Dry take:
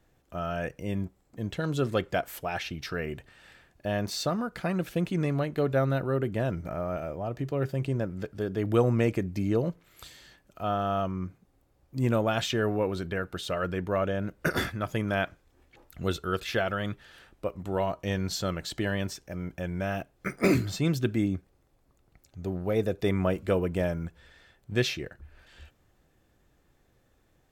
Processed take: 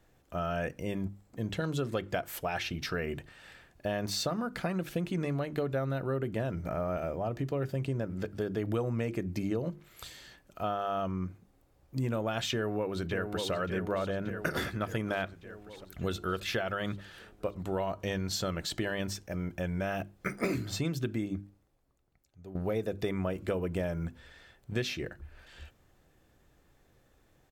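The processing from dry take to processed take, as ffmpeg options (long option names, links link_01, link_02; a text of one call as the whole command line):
ffmpeg -i in.wav -filter_complex "[0:a]asplit=2[link_01][link_02];[link_02]afade=type=in:start_time=12.51:duration=0.01,afade=type=out:start_time=13.52:duration=0.01,aecho=0:1:580|1160|1740|2320|2900|3480|4060|4640|5220:0.354813|0.230629|0.149909|0.0974406|0.0633364|0.0411687|0.0267596|0.0173938|0.0113059[link_03];[link_01][link_03]amix=inputs=2:normalize=0,asplit=2[link_04][link_05];[link_04]atrim=end=22.55,asetpts=PTS-STARTPTS,afade=type=out:start_time=21.09:duration=1.46:curve=qua:silence=0.188365[link_06];[link_05]atrim=start=22.55,asetpts=PTS-STARTPTS,afade=type=in:duration=0.004:curve=hsin:silence=0.188365[link_07];[link_06][link_07]concat=n=2:v=0:a=1,bandreject=frequency=50:width_type=h:width=6,bandreject=frequency=100:width_type=h:width=6,bandreject=frequency=150:width_type=h:width=6,bandreject=frequency=200:width_type=h:width=6,bandreject=frequency=250:width_type=h:width=6,bandreject=frequency=300:width_type=h:width=6,bandreject=frequency=350:width_type=h:width=6,acompressor=threshold=-30dB:ratio=6,volume=1.5dB" out.wav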